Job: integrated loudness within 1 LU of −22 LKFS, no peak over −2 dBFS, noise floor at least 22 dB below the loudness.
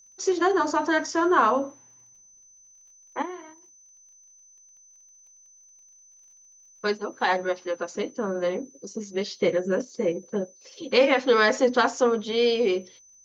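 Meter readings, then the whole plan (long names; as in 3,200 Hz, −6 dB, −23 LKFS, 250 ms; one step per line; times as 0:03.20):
crackle rate 25 per second; interfering tone 6,100 Hz; level of the tone −52 dBFS; integrated loudness −24.5 LKFS; sample peak −8.5 dBFS; target loudness −22.0 LKFS
→ click removal
notch filter 6,100 Hz, Q 30
level +2.5 dB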